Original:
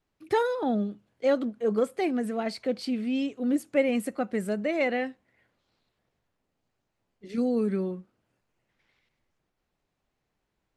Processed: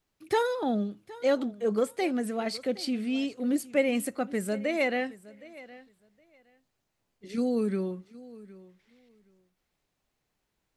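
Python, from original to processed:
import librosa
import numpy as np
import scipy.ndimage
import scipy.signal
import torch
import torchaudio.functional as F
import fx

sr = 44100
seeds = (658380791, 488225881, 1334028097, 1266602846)

p1 = fx.high_shelf(x, sr, hz=3400.0, db=8.0)
p2 = p1 + fx.echo_feedback(p1, sr, ms=766, feedback_pct=17, wet_db=-19.5, dry=0)
y = p2 * 10.0 ** (-1.5 / 20.0)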